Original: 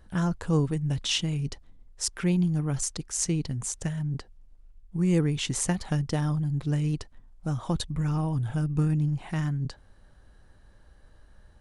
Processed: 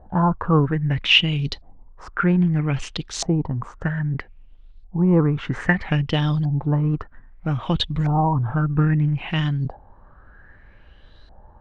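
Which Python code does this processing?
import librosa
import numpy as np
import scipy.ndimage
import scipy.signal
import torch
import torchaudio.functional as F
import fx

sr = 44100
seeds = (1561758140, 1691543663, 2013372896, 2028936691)

y = scipy.ndimage.median_filter(x, 3, mode='constant')
y = fx.filter_lfo_lowpass(y, sr, shape='saw_up', hz=0.62, low_hz=720.0, high_hz=4300.0, q=5.3)
y = y * 10.0 ** (6.0 / 20.0)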